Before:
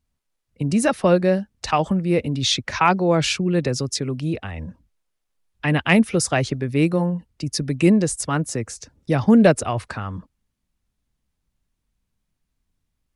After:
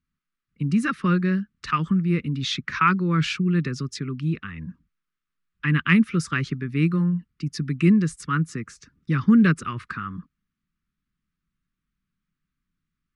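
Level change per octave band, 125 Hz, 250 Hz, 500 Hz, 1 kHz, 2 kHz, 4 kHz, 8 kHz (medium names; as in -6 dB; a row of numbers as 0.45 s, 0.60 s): 0.0 dB, -1.5 dB, -13.0 dB, -4.0 dB, -1.0 dB, -7.0 dB, -13.0 dB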